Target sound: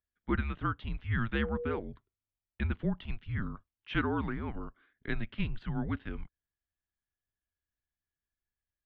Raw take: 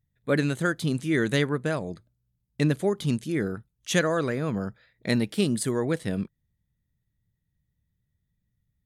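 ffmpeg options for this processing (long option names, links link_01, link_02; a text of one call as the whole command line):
ffmpeg -i in.wav -filter_complex "[0:a]asettb=1/sr,asplit=3[link_01][link_02][link_03];[link_01]atrim=end=1.354[link_04];[link_02]atrim=start=1.35:end=1.8,asetpts=PTS-STARTPTS,afade=type=in:duration=0.004:curve=qsin,afade=type=out:start_time=0.446:duration=0.004:curve=qsin,aeval=exprs='val(0)+0.0355*sin(2*PI*700*n/s)':channel_layout=same[link_05];[link_03]atrim=start=1.796[link_06];[link_04][link_05]acrossfade=duration=0.004:curve1=hsin:curve2=qsin[link_07];[link_07][link_06]acrossfade=duration=0.004:curve1=qsin:curve2=hsin,highpass=frequency=210:width_type=q:width=0.5412,highpass=frequency=210:width_type=q:width=1.307,lowpass=frequency=3300:width_type=q:width=0.5176,lowpass=frequency=3300:width_type=q:width=0.7071,lowpass=frequency=3300:width_type=q:width=1.932,afreqshift=-220,volume=-6dB" out.wav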